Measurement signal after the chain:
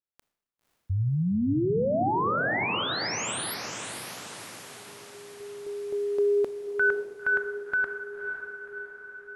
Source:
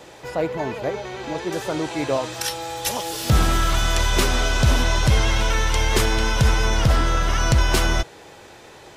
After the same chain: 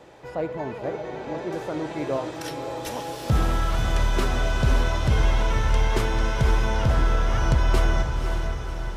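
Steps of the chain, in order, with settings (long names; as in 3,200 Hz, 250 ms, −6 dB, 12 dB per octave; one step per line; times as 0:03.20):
high-shelf EQ 2,600 Hz −11 dB
feedback delay with all-pass diffusion 541 ms, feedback 57%, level −6.5 dB
four-comb reverb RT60 0.81 s, combs from 26 ms, DRR 16 dB
level −4 dB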